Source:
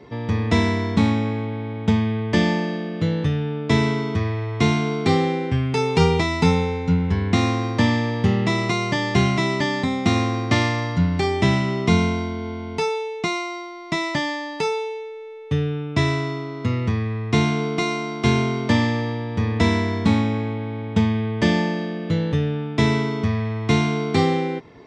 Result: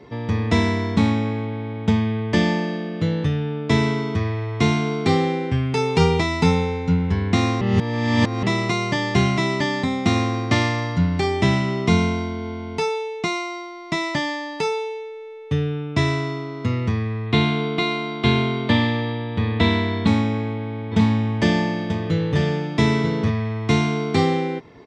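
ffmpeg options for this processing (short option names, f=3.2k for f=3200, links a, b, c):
-filter_complex "[0:a]asettb=1/sr,asplit=3[a][b][c];[a]atrim=end=17.264[d];[b]atrim=start=17.26:end=20.07,asetpts=PTS-STARTPTS,afade=t=in:d=0.004:c=qsin,afade=t=out:st=2.806:d=0.004:c=qsin,highshelf=f=4.7k:t=q:w=3:g=-6.5[e];[c]atrim=start=20.066[f];[d][e]acrossfade=d=0.004:c1=hsin:c2=qsin[g];[g][f]acrossfade=d=0.004:c1=qsin:c2=hsin,asplit=3[h][i][j];[h]afade=t=out:st=20.91:d=0.02[k];[i]aecho=1:1:937:0.501,afade=t=in:st=20.91:d=0.02,afade=t=out:st=23.29:d=0.02[l];[j]afade=t=in:st=23.29:d=0.02[m];[k][l][m]amix=inputs=3:normalize=0,asplit=3[n][o][p];[n]atrim=end=7.612[q];[o]atrim=start=7.608:end=8.432,asetpts=PTS-STARTPTS,areverse[r];[p]atrim=start=8.428[s];[q][r]acrossfade=d=0.004:c1=hsin:c2=hsin[t];[t][s]acrossfade=d=0.004:c1=hsin:c2=hsin"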